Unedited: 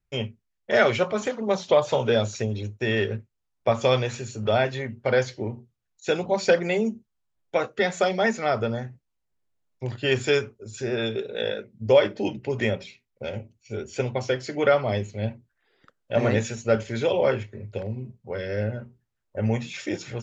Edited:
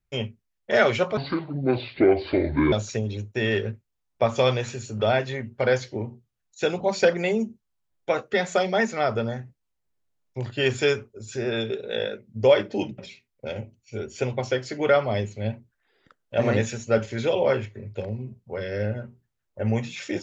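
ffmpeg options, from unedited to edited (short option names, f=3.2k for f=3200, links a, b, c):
-filter_complex "[0:a]asplit=4[a][b][c][d];[a]atrim=end=1.174[e];[b]atrim=start=1.17:end=2.18,asetpts=PTS-STARTPTS,asetrate=28665,aresample=44100[f];[c]atrim=start=2.176:end=12.442[g];[d]atrim=start=12.758[h];[e][f]acrossfade=d=0.004:c1=hsin:c2=hsin[i];[i][g]acrossfade=d=0.004:c1=hsin:c2=hsin[j];[j][h]acrossfade=d=0.004:c1=hsin:c2=hsin"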